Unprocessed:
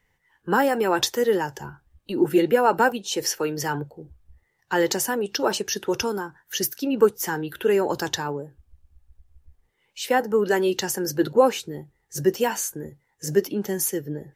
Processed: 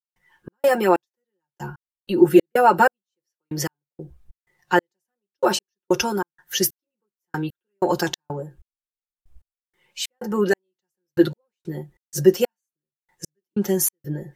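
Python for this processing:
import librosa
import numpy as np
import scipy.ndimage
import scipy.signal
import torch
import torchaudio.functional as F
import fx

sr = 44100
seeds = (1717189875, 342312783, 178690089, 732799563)

y = x + 0.85 * np.pad(x, (int(5.6 * sr / 1000.0), 0))[:len(x)]
y = fx.step_gate(y, sr, bpm=94, pattern='.xx.xx....x.', floor_db=-60.0, edge_ms=4.5)
y = y * 10.0 ** (1.5 / 20.0)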